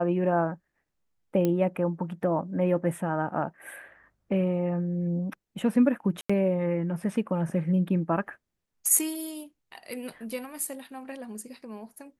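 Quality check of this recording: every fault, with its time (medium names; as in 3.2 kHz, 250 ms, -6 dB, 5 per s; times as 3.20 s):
1.45 s: pop -14 dBFS
6.21–6.29 s: dropout 85 ms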